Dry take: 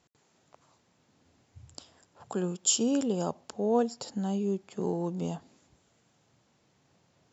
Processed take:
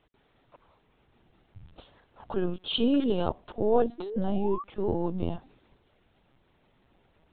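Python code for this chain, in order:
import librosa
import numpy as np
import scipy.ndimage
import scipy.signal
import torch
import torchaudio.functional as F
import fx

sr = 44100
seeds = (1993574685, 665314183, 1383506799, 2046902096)

y = fx.spec_paint(x, sr, seeds[0], shape='rise', start_s=3.98, length_s=0.65, low_hz=330.0, high_hz=1200.0, level_db=-39.0)
y = fx.lpc_vocoder(y, sr, seeds[1], excitation='pitch_kept', order=16)
y = fx.high_shelf(y, sr, hz=2300.0, db=11.0, at=(2.74, 3.29))
y = y * librosa.db_to_amplitude(3.0)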